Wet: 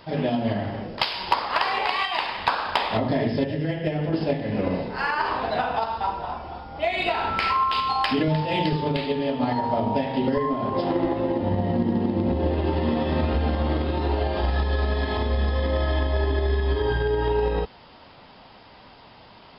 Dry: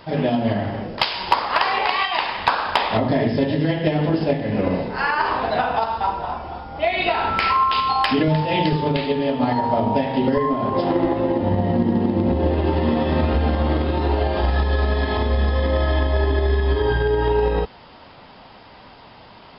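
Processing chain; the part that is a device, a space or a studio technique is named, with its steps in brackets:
exciter from parts (in parallel at −12 dB: high-pass filter 2,100 Hz 12 dB per octave + soft clipping −27 dBFS, distortion −9 dB)
0:03.44–0:04.13: on the sum: graphic EQ with 15 bands 250 Hz −6 dB, 1,000 Hz −7 dB, 4,000 Hz −10 dB
level −4 dB

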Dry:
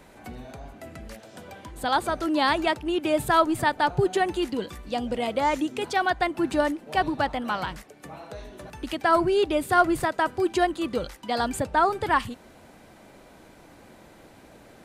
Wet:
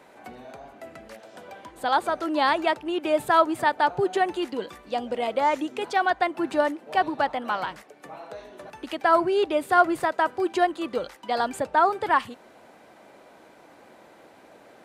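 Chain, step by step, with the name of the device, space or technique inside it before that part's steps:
high-shelf EQ 4,500 Hz −6.5 dB
filter by subtraction (in parallel: low-pass filter 610 Hz 12 dB per octave + polarity inversion)

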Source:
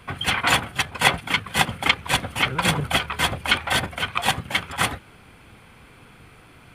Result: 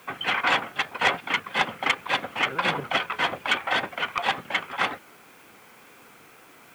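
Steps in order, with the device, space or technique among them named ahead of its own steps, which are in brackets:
tape answering machine (band-pass filter 300–2,900 Hz; soft clipping −12 dBFS, distortion −15 dB; tape wow and flutter; white noise bed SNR 30 dB)

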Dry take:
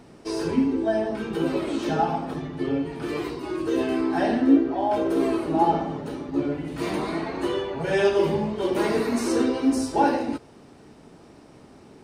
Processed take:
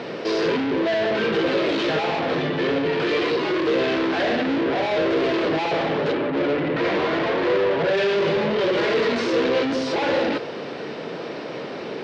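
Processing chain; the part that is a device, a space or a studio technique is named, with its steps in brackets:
0:06.12–0:07.96: low-pass filter 2,800 Hz → 1,600 Hz 24 dB per octave
overdrive pedal into a guitar cabinet (mid-hump overdrive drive 39 dB, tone 7,100 Hz, clips at −6.5 dBFS; loudspeaker in its box 110–4,400 Hz, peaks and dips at 150 Hz +3 dB, 260 Hz −3 dB, 500 Hz +7 dB, 830 Hz −6 dB, 1,200 Hz −4 dB)
level −8.5 dB

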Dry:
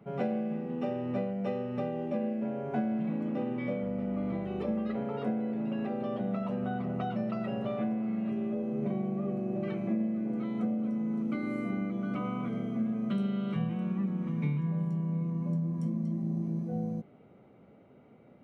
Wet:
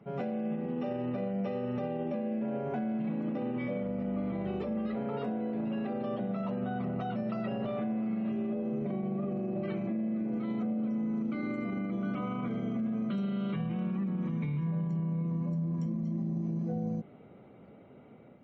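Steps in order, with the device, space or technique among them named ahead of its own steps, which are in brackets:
0:05.16–0:05.66: flutter between parallel walls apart 10.4 metres, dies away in 0.33 s
low-bitrate web radio (automatic gain control gain up to 4 dB; brickwall limiter −26 dBFS, peak gain reduction 10 dB; MP3 32 kbit/s 44,100 Hz)

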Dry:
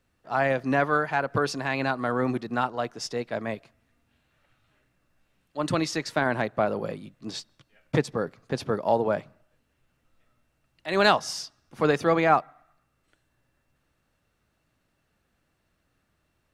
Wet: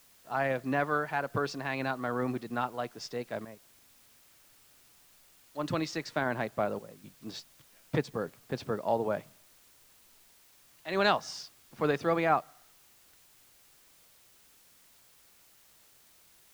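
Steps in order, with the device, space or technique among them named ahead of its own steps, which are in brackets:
worn cassette (low-pass filter 6,200 Hz; tape wow and flutter 24 cents; tape dropouts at 0:03.45/0:06.79/0:10.29, 248 ms −11 dB; white noise bed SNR 26 dB)
level −6 dB

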